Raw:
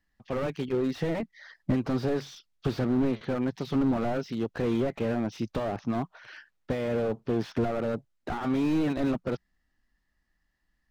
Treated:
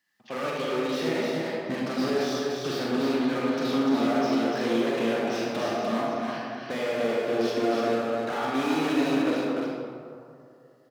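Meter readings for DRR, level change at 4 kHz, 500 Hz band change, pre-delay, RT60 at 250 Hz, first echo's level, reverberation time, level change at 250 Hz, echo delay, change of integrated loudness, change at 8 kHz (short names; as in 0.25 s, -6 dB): -5.5 dB, +10.5 dB, +4.5 dB, 37 ms, 2.3 s, -4.0 dB, 2.6 s, +2.0 dB, 0.296 s, +3.0 dB, n/a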